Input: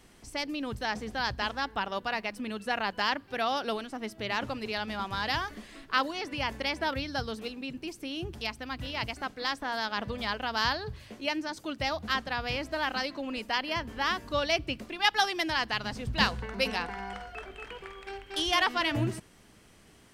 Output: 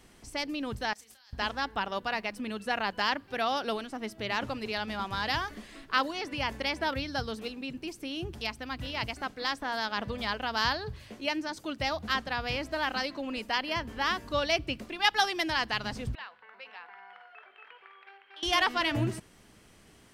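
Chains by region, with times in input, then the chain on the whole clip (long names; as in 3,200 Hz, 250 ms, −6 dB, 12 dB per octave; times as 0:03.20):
0:00.93–0:01.33: compressor whose output falls as the input rises −44 dBFS + first-order pre-emphasis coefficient 0.97 + double-tracking delay 31 ms −9 dB
0:16.15–0:18.43: high-frequency loss of the air 420 metres + downward compressor 2 to 1, threshold −44 dBFS + high-pass filter 1,000 Hz
whole clip: no processing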